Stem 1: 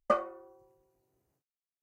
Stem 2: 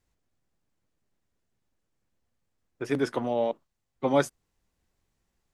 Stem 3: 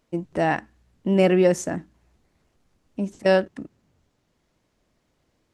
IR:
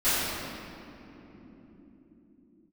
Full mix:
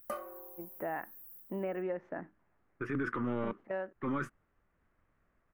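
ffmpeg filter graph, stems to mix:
-filter_complex "[0:a]aemphasis=mode=production:type=50fm,volume=1dB[link_01];[1:a]aeval=exprs='if(lt(val(0),0),0.708*val(0),val(0))':channel_layout=same,firequalizer=gain_entry='entry(340,0);entry(710,-19);entry(1200,9);entry(4200,-21)':delay=0.05:min_phase=1,volume=2.5dB[link_02];[2:a]highpass=frequency=630:poles=1,dynaudnorm=framelen=120:gausssize=5:maxgain=9dB,lowpass=frequency=1900:width=0.5412,lowpass=frequency=1900:width=1.3066,adelay=450,volume=-13.5dB[link_03];[link_01][link_03]amix=inputs=2:normalize=0,aexciter=amount=7.1:drive=6.9:freq=10000,acompressor=threshold=-34dB:ratio=4,volume=0dB[link_04];[link_02][link_04]amix=inputs=2:normalize=0,alimiter=level_in=1.5dB:limit=-24dB:level=0:latency=1:release=28,volume=-1.5dB"

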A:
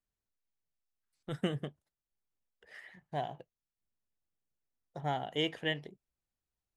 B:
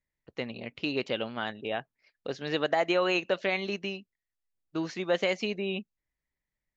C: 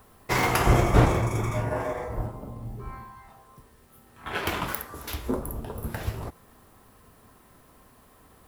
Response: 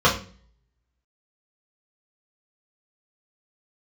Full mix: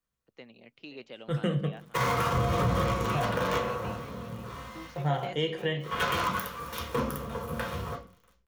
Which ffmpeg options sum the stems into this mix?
-filter_complex "[0:a]volume=1.5dB,asplit=3[link_01][link_02][link_03];[link_02]volume=-19.5dB[link_04];[link_03]volume=-20dB[link_05];[1:a]highpass=130,volume=-14dB,asplit=2[link_06][link_07];[link_07]volume=-11.5dB[link_08];[2:a]highpass=frequency=280:poles=1,acrusher=bits=5:dc=4:mix=0:aa=0.000001,adelay=1650,volume=-6.5dB,asplit=2[link_09][link_10];[link_10]volume=-8dB[link_11];[3:a]atrim=start_sample=2205[link_12];[link_04][link_11]amix=inputs=2:normalize=0[link_13];[link_13][link_12]afir=irnorm=-1:irlink=0[link_14];[link_05][link_08]amix=inputs=2:normalize=0,aecho=0:1:526:1[link_15];[link_01][link_06][link_09][link_14][link_15]amix=inputs=5:normalize=0,acrossover=split=200[link_16][link_17];[link_17]acompressor=threshold=-20dB:ratio=6[link_18];[link_16][link_18]amix=inputs=2:normalize=0,alimiter=limit=-17.5dB:level=0:latency=1:release=159"

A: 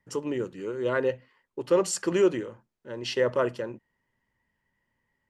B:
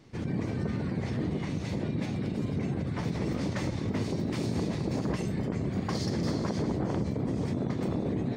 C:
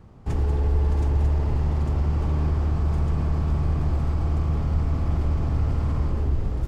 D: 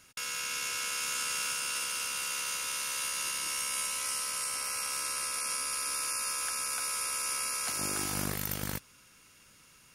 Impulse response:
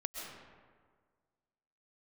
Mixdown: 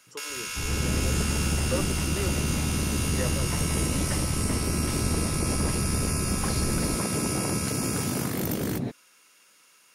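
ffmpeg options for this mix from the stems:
-filter_complex "[0:a]acrossover=split=420[link_01][link_02];[link_01]aeval=exprs='val(0)*(1-1/2+1/2*cos(2*PI*2*n/s))':channel_layout=same[link_03];[link_02]aeval=exprs='val(0)*(1-1/2-1/2*cos(2*PI*2*n/s))':channel_layout=same[link_04];[link_03][link_04]amix=inputs=2:normalize=0,volume=-6dB[link_05];[1:a]adelay=550,volume=1dB[link_06];[2:a]adelay=300,volume=-8dB[link_07];[3:a]highpass=370,volume=1dB[link_08];[link_05][link_06][link_07][link_08]amix=inputs=4:normalize=0"

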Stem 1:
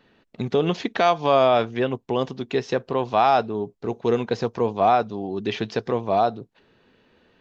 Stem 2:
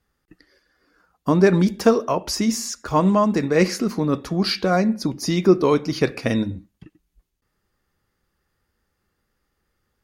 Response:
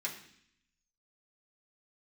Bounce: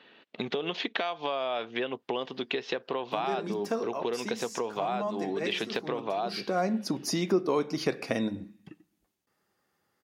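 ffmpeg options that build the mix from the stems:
-filter_complex "[0:a]bass=frequency=250:gain=-8,treble=frequency=4000:gain=-11,acompressor=threshold=-27dB:ratio=6,equalizer=frequency=3400:width_type=o:width=1.3:gain=10.5,volume=2dB,asplit=2[link_01][link_02];[1:a]equalizer=frequency=720:width_type=o:width=0.77:gain=5,adelay=1850,volume=-1.5dB,asplit=2[link_03][link_04];[link_04]volume=-19dB[link_05];[link_02]apad=whole_len=524045[link_06];[link_03][link_06]sidechaincompress=threshold=-38dB:ratio=8:attack=5:release=357[link_07];[2:a]atrim=start_sample=2205[link_08];[link_05][link_08]afir=irnorm=-1:irlink=0[link_09];[link_01][link_07][link_09]amix=inputs=3:normalize=0,highpass=170,acompressor=threshold=-30dB:ratio=2"

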